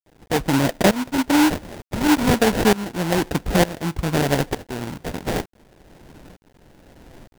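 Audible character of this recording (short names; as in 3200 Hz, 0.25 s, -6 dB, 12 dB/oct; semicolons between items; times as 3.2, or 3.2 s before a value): aliases and images of a low sample rate 1200 Hz, jitter 20%; tremolo saw up 1.1 Hz, depth 90%; a quantiser's noise floor 10-bit, dither none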